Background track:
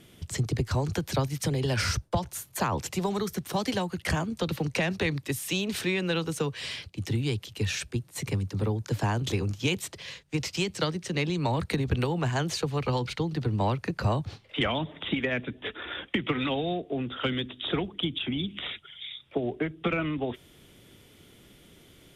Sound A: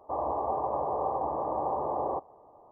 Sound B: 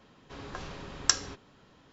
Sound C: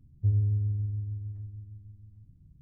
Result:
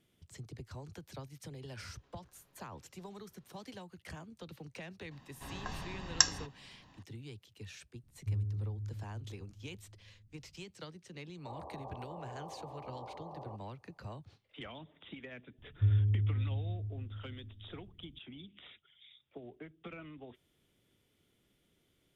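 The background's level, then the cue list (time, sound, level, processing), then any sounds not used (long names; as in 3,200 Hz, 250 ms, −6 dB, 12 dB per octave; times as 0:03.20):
background track −19.5 dB
0:01.74: mix in B −14.5 dB + downward compressor 12 to 1, threshold −53 dBFS
0:05.11: mix in B −3 dB + comb filter 1.1 ms, depth 58%
0:08.03: mix in C −10 dB
0:11.37: mix in A −17.5 dB
0:15.58: mix in C −2.5 dB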